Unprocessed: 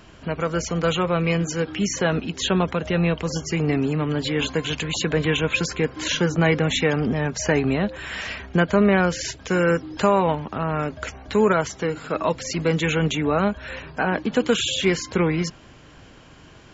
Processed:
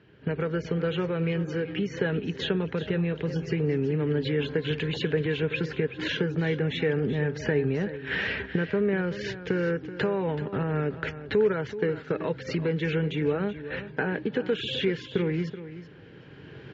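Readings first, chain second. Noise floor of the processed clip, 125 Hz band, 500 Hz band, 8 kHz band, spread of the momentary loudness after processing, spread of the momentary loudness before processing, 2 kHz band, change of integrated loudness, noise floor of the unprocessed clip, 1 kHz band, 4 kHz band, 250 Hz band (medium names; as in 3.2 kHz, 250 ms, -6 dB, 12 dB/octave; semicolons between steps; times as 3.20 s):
-47 dBFS, -4.0 dB, -4.5 dB, no reading, 5 LU, 7 LU, -6.0 dB, -6.0 dB, -47 dBFS, -13.0 dB, -8.5 dB, -6.0 dB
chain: recorder AGC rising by 9.7 dB/s; band-stop 700 Hz, Q 12; gate -30 dBFS, range -14 dB; bass shelf 330 Hz +9 dB; compression 3:1, threshold -29 dBFS, peak gain reduction 15 dB; cabinet simulation 130–4000 Hz, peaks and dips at 130 Hz +5 dB, 230 Hz -4 dB, 430 Hz +9 dB, 650 Hz -4 dB, 1.1 kHz -8 dB, 1.7 kHz +7 dB; feedback delay 379 ms, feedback 17%, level -13 dB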